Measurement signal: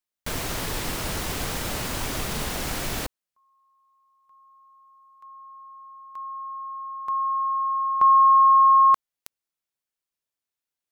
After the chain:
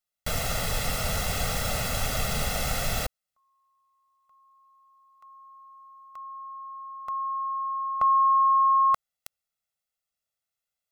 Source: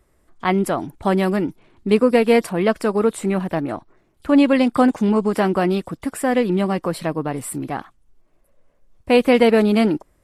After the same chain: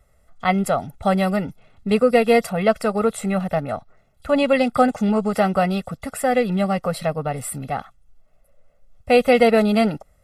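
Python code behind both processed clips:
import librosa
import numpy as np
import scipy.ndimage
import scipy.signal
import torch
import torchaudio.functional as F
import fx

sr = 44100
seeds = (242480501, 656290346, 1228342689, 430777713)

y = x + 0.91 * np.pad(x, (int(1.5 * sr / 1000.0), 0))[:len(x)]
y = F.gain(torch.from_numpy(y), -2.0).numpy()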